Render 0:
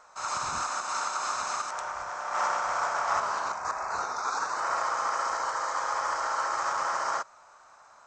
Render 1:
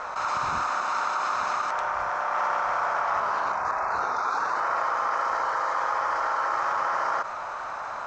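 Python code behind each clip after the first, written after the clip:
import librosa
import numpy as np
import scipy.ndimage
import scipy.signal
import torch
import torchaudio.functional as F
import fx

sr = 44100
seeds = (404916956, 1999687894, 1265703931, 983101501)

y = scipy.signal.sosfilt(scipy.signal.butter(2, 3100.0, 'lowpass', fs=sr, output='sos'), x)
y = fx.env_flatten(y, sr, amount_pct=70)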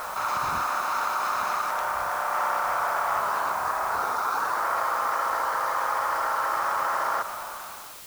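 y = fx.fade_out_tail(x, sr, length_s=0.82)
y = fx.dmg_noise_colour(y, sr, seeds[0], colour='white', level_db=-44.0)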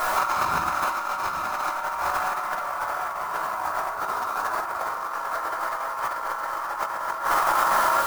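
y = x + 10.0 ** (-4.0 / 20.0) * np.pad(x, (int(778 * sr / 1000.0), 0))[:len(x)]
y = fx.room_shoebox(y, sr, seeds[1], volume_m3=530.0, walls='furnished', distance_m=3.1)
y = fx.over_compress(y, sr, threshold_db=-25.0, ratio=-0.5)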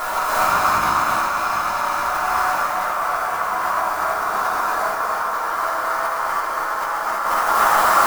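y = x + 10.0 ** (-6.0 / 20.0) * np.pad(x, (int(240 * sr / 1000.0), 0))[:len(x)]
y = fx.rev_gated(y, sr, seeds[2], gate_ms=360, shape='rising', drr_db=-5.0)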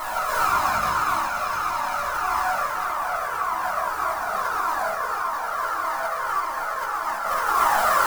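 y = fx.comb_cascade(x, sr, direction='falling', hz=1.7)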